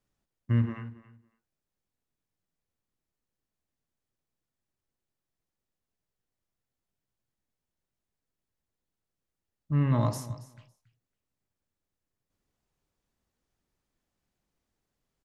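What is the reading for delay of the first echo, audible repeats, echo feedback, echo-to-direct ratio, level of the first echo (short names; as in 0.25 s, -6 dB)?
0.278 s, 2, 16%, -17.0 dB, -17.0 dB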